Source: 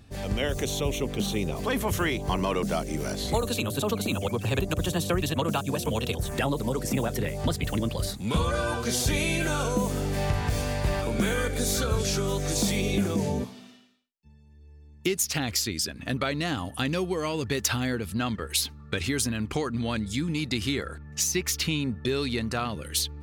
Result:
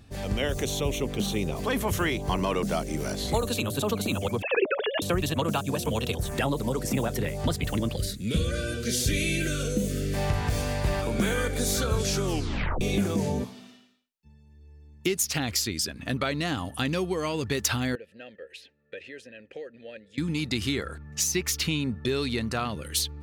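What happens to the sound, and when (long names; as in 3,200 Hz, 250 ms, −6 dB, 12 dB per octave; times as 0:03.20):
0:04.42–0:05.02: three sine waves on the formant tracks
0:07.96–0:10.14: Butterworth band-reject 910 Hz, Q 0.86
0:12.24: tape stop 0.57 s
0:17.95–0:20.18: formant filter e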